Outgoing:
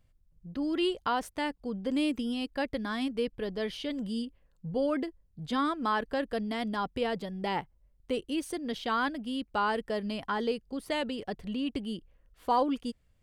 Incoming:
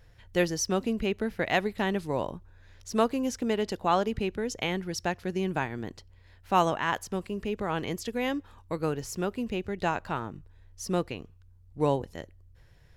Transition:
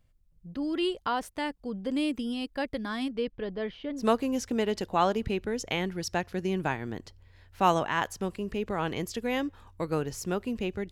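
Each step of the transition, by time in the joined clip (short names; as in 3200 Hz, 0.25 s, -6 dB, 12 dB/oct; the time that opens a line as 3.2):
outgoing
3.11–4.04 LPF 5800 Hz -> 1400 Hz
4 switch to incoming from 2.91 s, crossfade 0.08 s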